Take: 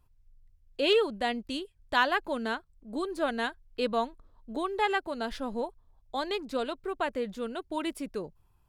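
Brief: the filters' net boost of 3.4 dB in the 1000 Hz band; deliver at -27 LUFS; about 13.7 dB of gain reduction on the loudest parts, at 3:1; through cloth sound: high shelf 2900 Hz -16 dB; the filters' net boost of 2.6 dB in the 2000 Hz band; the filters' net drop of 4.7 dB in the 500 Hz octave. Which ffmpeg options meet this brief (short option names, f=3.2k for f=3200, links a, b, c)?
-af "equalizer=f=500:t=o:g=-7.5,equalizer=f=1k:t=o:g=7,equalizer=f=2k:t=o:g=7,acompressor=threshold=-32dB:ratio=3,highshelf=f=2.9k:g=-16,volume=11.5dB"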